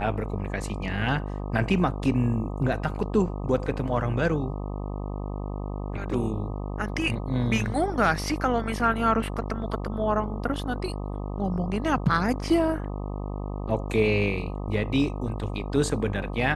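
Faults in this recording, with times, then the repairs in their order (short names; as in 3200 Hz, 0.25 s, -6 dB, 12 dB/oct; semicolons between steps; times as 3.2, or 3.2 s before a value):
buzz 50 Hz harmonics 25 -32 dBFS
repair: de-hum 50 Hz, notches 25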